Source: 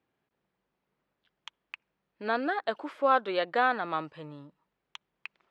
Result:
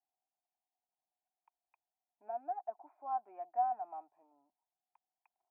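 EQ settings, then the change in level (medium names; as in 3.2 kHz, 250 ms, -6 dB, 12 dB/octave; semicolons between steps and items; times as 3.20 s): cascade formant filter a; static phaser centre 760 Hz, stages 8; -1.5 dB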